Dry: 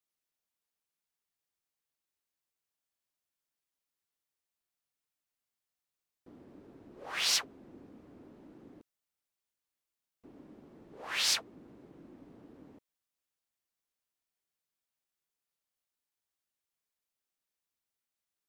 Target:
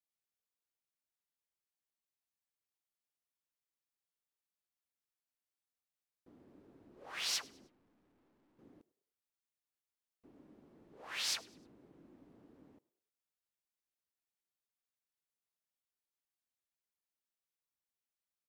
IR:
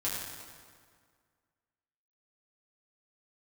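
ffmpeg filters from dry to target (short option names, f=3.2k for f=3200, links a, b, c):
-filter_complex "[0:a]asettb=1/sr,asplit=3[a][b][c];[a]atrim=end=7.674[d];[b]atrim=start=7.67:end=8.59,asetpts=PTS-STARTPTS,afade=t=in:d=0.004:c=qsin,afade=t=out:st=0.916:d=0.004:c=qsin,aeval=exprs='(tanh(2000*val(0)+0.3)-tanh(0.3))/2000':c=same[e];[c]atrim=start=8.586[f];[d][e]acrossfade=d=0.004:c1=hsin:c2=qsin[g];[g][f]acrossfade=d=0.004:c1=qsin:c2=hsin,asplit=4[h][i][j][k];[i]adelay=102,afreqshift=45,volume=-23dB[l];[j]adelay=204,afreqshift=90,volume=-31.2dB[m];[k]adelay=306,afreqshift=135,volume=-39.4dB[n];[h][l][m][n]amix=inputs=4:normalize=0,volume=-7.5dB"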